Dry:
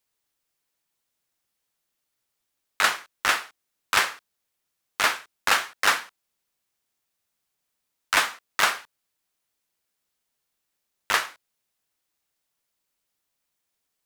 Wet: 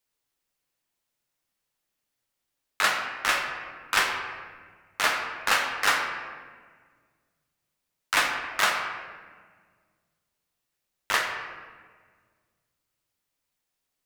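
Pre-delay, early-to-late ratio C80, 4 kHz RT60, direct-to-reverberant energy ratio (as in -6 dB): 4 ms, 5.5 dB, 1.0 s, 1.5 dB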